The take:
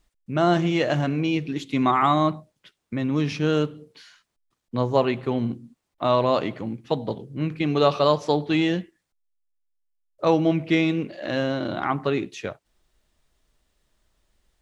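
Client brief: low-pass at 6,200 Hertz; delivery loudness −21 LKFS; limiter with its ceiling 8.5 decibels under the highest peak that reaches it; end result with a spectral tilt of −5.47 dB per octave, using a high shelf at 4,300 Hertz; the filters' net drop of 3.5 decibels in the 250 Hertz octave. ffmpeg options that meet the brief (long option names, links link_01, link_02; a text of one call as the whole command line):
ffmpeg -i in.wav -af "lowpass=6200,equalizer=frequency=250:width_type=o:gain=-5,highshelf=frequency=4300:gain=-7,volume=7dB,alimiter=limit=-8dB:level=0:latency=1" out.wav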